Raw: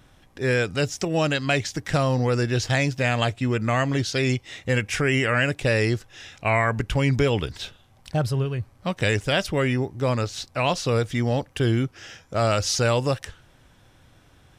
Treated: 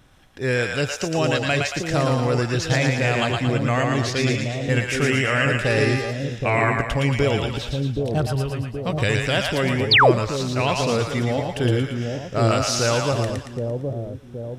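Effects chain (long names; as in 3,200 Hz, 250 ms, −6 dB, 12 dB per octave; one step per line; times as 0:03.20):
echo with a time of its own for lows and highs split 610 Hz, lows 773 ms, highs 114 ms, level −3 dB
0:05.64–0:06.10: hum with harmonics 400 Hz, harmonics 16, −31 dBFS −6 dB per octave
0:09.91–0:10.12: sound drawn into the spectrogram fall 290–5,100 Hz −13 dBFS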